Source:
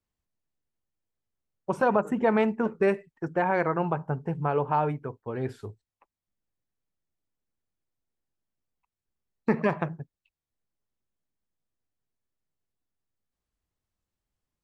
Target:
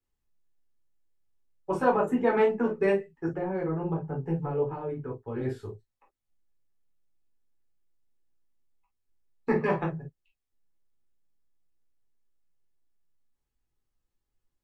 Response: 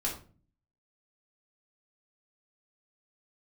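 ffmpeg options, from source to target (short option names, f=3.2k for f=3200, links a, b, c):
-filter_complex "[0:a]asettb=1/sr,asplit=3[a][b][c];[a]atrim=end=3.274[d];[b]atrim=start=3.27:end=5.4,asetpts=PTS-STARTPTS,afade=t=in:d=0.004:c=qsin,afade=t=out:st=2.126:d=0.004:c=qsin,acrossover=split=490[e][f];[f]acompressor=threshold=-39dB:ratio=6[g];[e][g]amix=inputs=2:normalize=0[h];[c]atrim=start=5.396[i];[d][h]acrossfade=d=0.004:c1=hsin:c2=qsin[j];[j][i]acrossfade=d=0.004:c1=qsin:c2=hsin[k];[1:a]atrim=start_sample=2205,atrim=end_sample=3528,asetrate=52920,aresample=44100[l];[k][l]afir=irnorm=-1:irlink=0,volume=-3.5dB"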